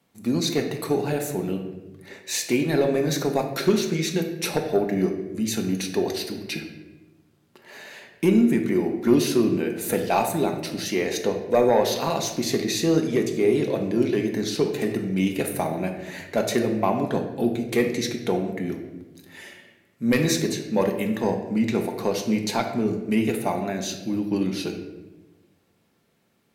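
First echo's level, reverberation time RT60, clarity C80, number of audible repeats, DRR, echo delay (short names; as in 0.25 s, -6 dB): none, 1.1 s, 9.5 dB, none, 3.0 dB, none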